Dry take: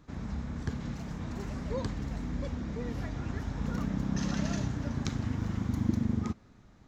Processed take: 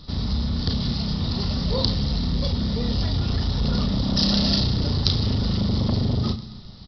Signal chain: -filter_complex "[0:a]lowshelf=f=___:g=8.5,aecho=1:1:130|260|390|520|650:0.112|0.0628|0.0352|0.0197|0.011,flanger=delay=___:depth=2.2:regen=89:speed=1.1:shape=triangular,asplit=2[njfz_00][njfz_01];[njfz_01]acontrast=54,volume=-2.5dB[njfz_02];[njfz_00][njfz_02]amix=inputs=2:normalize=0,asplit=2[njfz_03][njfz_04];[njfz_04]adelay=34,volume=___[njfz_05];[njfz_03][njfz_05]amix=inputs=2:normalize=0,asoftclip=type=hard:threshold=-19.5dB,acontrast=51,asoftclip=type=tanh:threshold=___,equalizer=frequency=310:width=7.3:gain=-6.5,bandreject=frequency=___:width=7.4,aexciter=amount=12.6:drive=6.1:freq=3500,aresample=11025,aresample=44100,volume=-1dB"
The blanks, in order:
160, 8.8, -8dB, -15dB, 1600